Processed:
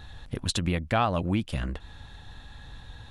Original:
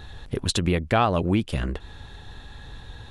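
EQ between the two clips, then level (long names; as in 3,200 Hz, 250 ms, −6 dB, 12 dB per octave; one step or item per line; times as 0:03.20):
parametric band 400 Hz −8 dB 0.42 octaves
−3.5 dB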